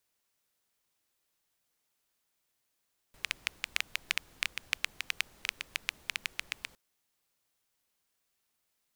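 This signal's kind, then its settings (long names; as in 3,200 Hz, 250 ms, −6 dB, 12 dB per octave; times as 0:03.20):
rain-like ticks over hiss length 3.61 s, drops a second 7.7, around 2,400 Hz, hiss −20.5 dB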